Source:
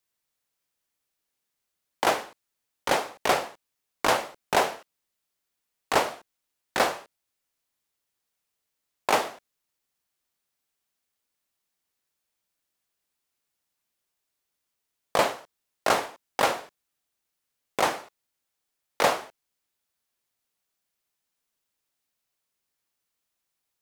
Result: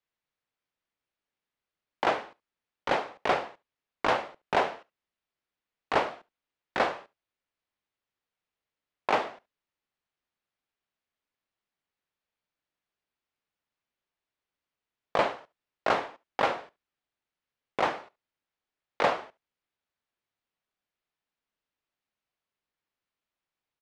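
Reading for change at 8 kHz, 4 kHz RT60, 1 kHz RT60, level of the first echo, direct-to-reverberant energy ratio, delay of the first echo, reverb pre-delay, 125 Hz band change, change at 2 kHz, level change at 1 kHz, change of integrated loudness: -17.0 dB, none, none, -23.0 dB, none, 71 ms, none, -2.5 dB, -3.0 dB, -2.5 dB, -3.0 dB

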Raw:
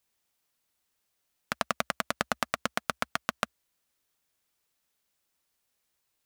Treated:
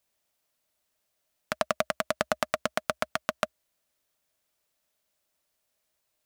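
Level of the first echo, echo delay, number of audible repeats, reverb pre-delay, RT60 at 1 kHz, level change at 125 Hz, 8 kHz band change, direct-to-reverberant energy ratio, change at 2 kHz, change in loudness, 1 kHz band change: none, none, none, none, none, 0.0 dB, 0.0 dB, none, 0.0 dB, +1.5 dB, +0.5 dB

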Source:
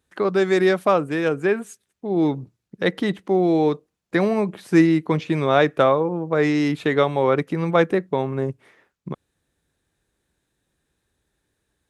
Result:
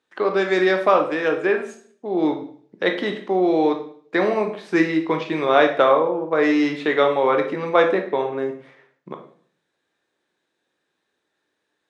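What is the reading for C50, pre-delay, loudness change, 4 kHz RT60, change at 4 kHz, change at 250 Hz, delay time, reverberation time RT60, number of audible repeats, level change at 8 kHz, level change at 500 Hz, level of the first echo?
8.5 dB, 15 ms, +0.5 dB, 0.50 s, +2.0 dB, -1.5 dB, none, 0.55 s, none, n/a, +1.0 dB, none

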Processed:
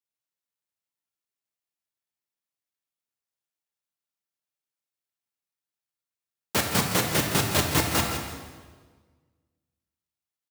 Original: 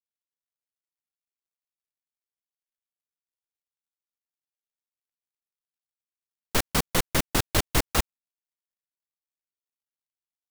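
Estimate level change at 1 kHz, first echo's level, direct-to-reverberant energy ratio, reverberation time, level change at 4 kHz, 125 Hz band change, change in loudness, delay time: +2.5 dB, -10.5 dB, 0.5 dB, 1.5 s, +2.5 dB, +2.5 dB, +2.0 dB, 0.164 s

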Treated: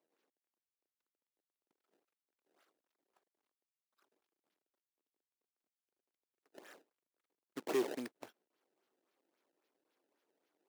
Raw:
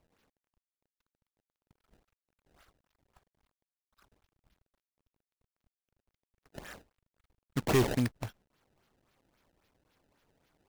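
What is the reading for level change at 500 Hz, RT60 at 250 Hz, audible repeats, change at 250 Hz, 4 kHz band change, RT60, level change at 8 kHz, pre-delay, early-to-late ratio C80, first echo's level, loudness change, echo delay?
-6.0 dB, none, none, -10.5 dB, -10.5 dB, none, -11.0 dB, none, none, none, -9.0 dB, none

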